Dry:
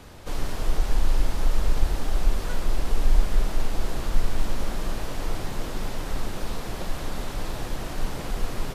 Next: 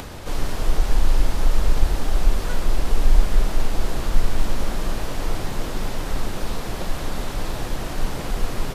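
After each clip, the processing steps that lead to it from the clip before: upward compressor, threshold -32 dBFS; trim +4 dB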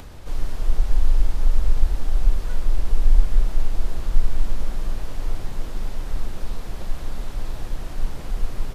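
bass shelf 82 Hz +11 dB; trim -9.5 dB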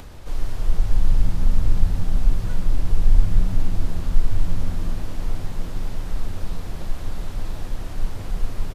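frequency-shifting echo 151 ms, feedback 46%, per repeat +78 Hz, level -19 dB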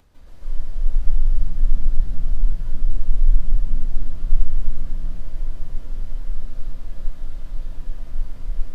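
reverberation RT60 0.30 s, pre-delay 146 ms, DRR -6 dB; trim -18 dB

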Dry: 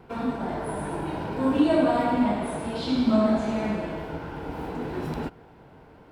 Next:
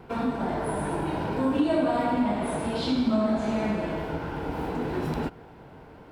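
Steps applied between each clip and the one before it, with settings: compression 2:1, threshold -28 dBFS, peak gain reduction 7.5 dB; trim +3 dB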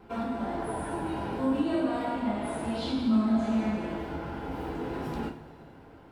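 two-slope reverb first 0.3 s, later 2.6 s, from -19 dB, DRR -0.5 dB; trim -7.5 dB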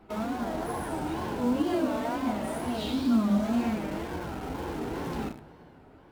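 in parallel at -8 dB: bit crusher 6-bit; on the sum: wow and flutter 140 cents; trim -2.5 dB

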